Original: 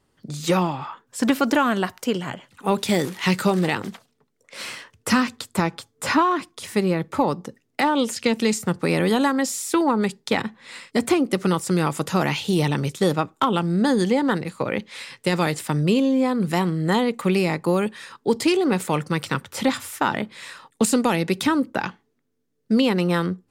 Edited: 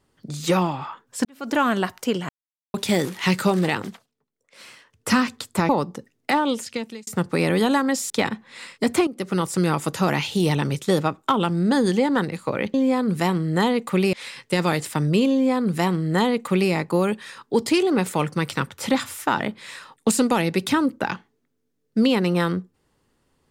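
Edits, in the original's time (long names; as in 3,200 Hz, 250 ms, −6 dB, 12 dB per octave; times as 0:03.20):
0:01.25–0:01.61: fade in quadratic
0:02.29–0:02.74: silence
0:03.82–0:05.12: duck −11.5 dB, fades 0.27 s
0:05.69–0:07.19: remove
0:07.85–0:08.57: fade out
0:09.60–0:10.23: remove
0:11.20–0:11.61: fade in, from −14.5 dB
0:16.06–0:17.45: duplicate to 0:14.87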